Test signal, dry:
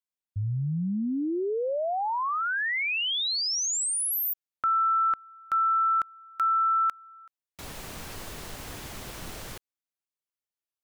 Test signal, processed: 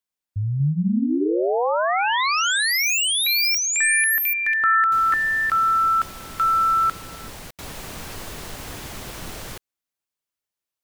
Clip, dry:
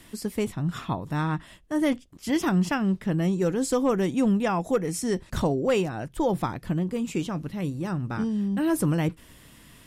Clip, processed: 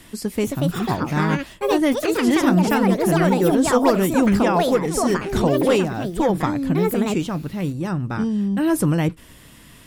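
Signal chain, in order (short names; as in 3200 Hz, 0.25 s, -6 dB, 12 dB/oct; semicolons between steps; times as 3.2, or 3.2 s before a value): echoes that change speed 0.331 s, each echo +5 st, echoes 2; gain +5 dB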